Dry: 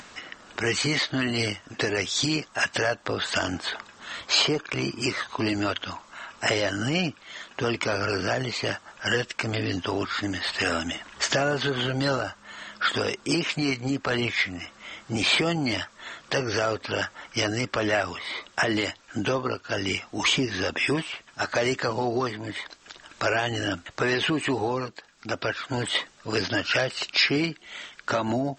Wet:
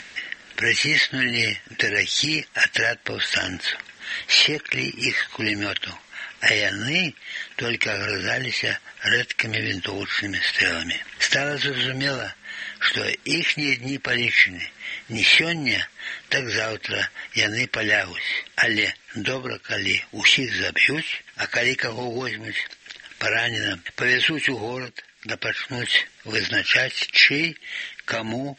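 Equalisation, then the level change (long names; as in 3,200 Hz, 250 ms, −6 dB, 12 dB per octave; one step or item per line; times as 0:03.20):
high-frequency loss of the air 53 metres
high shelf with overshoot 1,500 Hz +7 dB, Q 3
−1.5 dB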